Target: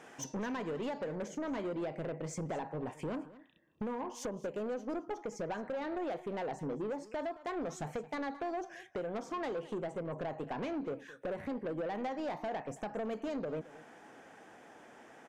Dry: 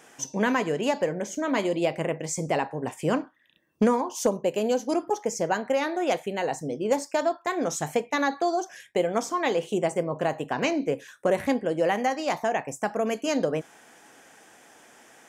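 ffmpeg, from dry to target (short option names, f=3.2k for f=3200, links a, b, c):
-af "asetnsamples=n=441:p=0,asendcmd='1.28 lowpass f 1200',lowpass=f=2.2k:p=1,acompressor=threshold=-31dB:ratio=10,asoftclip=type=tanh:threshold=-33.5dB,aecho=1:1:220:0.126,volume=1dB"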